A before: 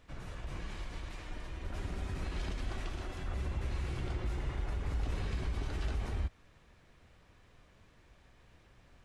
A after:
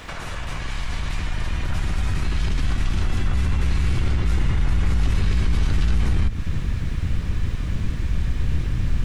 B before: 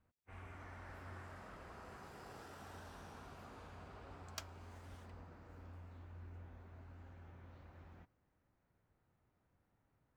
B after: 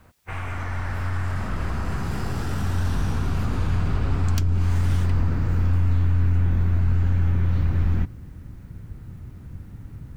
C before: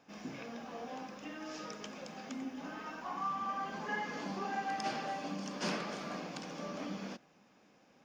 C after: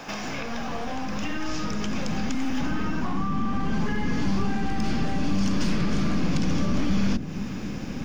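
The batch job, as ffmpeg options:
-filter_complex "[0:a]apsyclip=35.5dB,acrossover=split=580[link_01][link_02];[link_01]aeval=exprs='(tanh(25.1*val(0)+0.6)-tanh(0.6))/25.1':channel_layout=same[link_03];[link_02]acompressor=threshold=-24dB:ratio=10[link_04];[link_03][link_04]amix=inputs=2:normalize=0,asubboost=boost=10.5:cutoff=210,volume=-8.5dB"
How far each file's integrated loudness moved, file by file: +15.0, +30.5, +12.5 LU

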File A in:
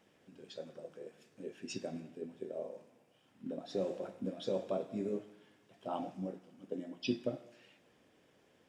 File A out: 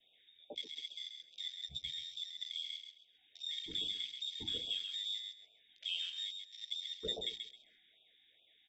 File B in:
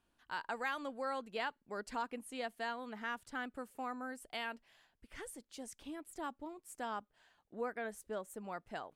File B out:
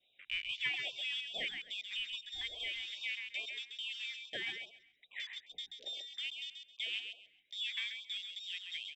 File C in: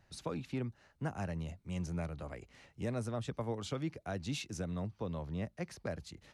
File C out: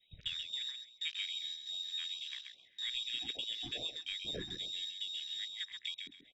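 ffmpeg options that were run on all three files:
-filter_complex "[0:a]highpass=40,aemphasis=mode=production:type=75kf,lowpass=frequency=3300:width_type=q:width=0.5098,lowpass=frequency=3300:width_type=q:width=0.6013,lowpass=frequency=3300:width_type=q:width=0.9,lowpass=frequency=3300:width_type=q:width=2.563,afreqshift=-3900,acrossover=split=730|2200[link_01][link_02][link_03];[link_03]acompressor=threshold=-51dB:ratio=5[link_04];[link_01][link_02][link_04]amix=inputs=3:normalize=0,asuperstop=centerf=1100:order=8:qfactor=1.1,acompressor=mode=upward:threshold=-52dB:ratio=2.5,bandreject=frequency=50:width_type=h:width=6,bandreject=frequency=100:width_type=h:width=6,bandreject=frequency=150:width_type=h:width=6,bandreject=frequency=200:width_type=h:width=6,bandreject=frequency=250:width_type=h:width=6,bandreject=frequency=300:width_type=h:width=6,bandreject=frequency=350:width_type=h:width=6,bandreject=frequency=400:width_type=h:width=6,afwtdn=0.00224,asplit=2[link_05][link_06];[link_06]aecho=0:1:133|266|399:0.531|0.122|0.0281[link_07];[link_05][link_07]amix=inputs=2:normalize=0,adynamicequalizer=threshold=0.00112:dfrequency=1700:dqfactor=0.75:tfrequency=1700:tqfactor=0.75:attack=5:release=100:ratio=0.375:range=2:mode=cutabove:tftype=bell,afftfilt=real='re*(1-between(b*sr/1024,490*pow(1700/490,0.5+0.5*sin(2*PI*2.4*pts/sr))/1.41,490*pow(1700/490,0.5+0.5*sin(2*PI*2.4*pts/sr))*1.41))':imag='im*(1-between(b*sr/1024,490*pow(1700/490,0.5+0.5*sin(2*PI*2.4*pts/sr))/1.41,490*pow(1700/490,0.5+0.5*sin(2*PI*2.4*pts/sr))*1.41))':win_size=1024:overlap=0.75,volume=7.5dB"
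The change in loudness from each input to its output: +1.5, +3.5, +1.5 LU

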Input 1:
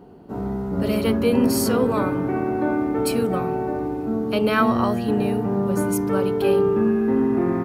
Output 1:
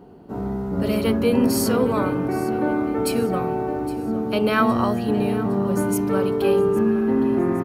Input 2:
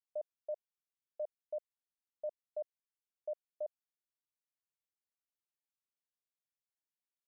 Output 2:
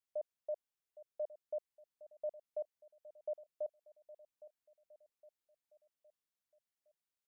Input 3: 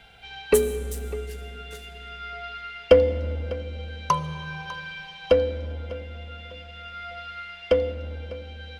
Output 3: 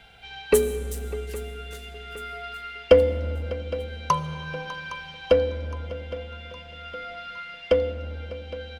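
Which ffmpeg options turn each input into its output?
-af "aecho=1:1:813|1626|2439|3252:0.15|0.0733|0.0359|0.0176"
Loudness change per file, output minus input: 0.0, 0.0, −0.5 LU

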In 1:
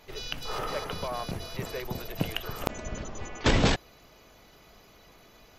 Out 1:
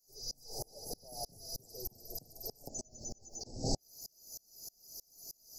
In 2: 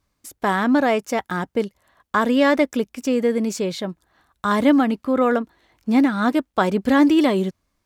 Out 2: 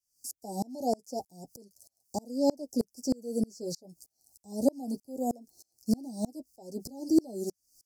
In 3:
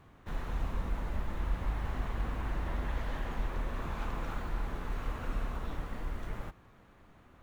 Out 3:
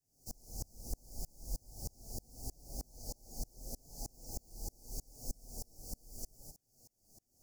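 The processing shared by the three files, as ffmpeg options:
-filter_complex "[0:a]acrossover=split=230|820[link_01][link_02][link_03];[link_03]aexciter=amount=11.7:drive=8.4:freq=3100[link_04];[link_01][link_02][link_04]amix=inputs=3:normalize=0,acrossover=split=2800[link_05][link_06];[link_06]acompressor=threshold=-33dB:ratio=4:attack=1:release=60[link_07];[link_05][link_07]amix=inputs=2:normalize=0,flanger=delay=7:depth=2.1:regen=-32:speed=0.77:shape=triangular,asuperstop=centerf=2000:order=20:qfactor=0.51,aeval=exprs='val(0)*pow(10,-32*if(lt(mod(-3.2*n/s,1),2*abs(-3.2)/1000),1-mod(-3.2*n/s,1)/(2*abs(-3.2)/1000),(mod(-3.2*n/s,1)-2*abs(-3.2)/1000)/(1-2*abs(-3.2)/1000))/20)':channel_layout=same"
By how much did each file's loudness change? −12.5, −13.0, −9.0 LU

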